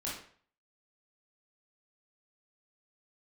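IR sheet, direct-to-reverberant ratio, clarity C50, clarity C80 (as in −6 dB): −7.0 dB, 2.5 dB, 8.0 dB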